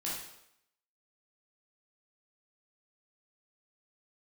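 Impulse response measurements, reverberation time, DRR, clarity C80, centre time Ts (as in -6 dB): 0.80 s, -6.5 dB, 5.0 dB, 56 ms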